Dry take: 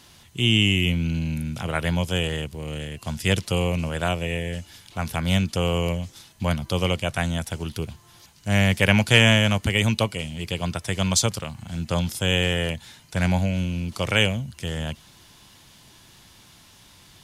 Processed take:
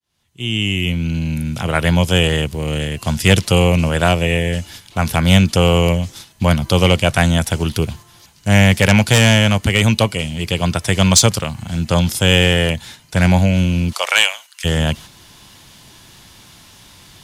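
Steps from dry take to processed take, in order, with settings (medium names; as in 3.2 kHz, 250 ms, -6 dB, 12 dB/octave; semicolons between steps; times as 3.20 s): fade-in on the opening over 2.86 s; 13.92–14.64 s: high-pass 570 Hz -> 1.3 kHz 24 dB/octave; gate -45 dBFS, range -6 dB; sine folder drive 8 dB, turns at -1 dBFS; gain riding within 4 dB 2 s; trim -2.5 dB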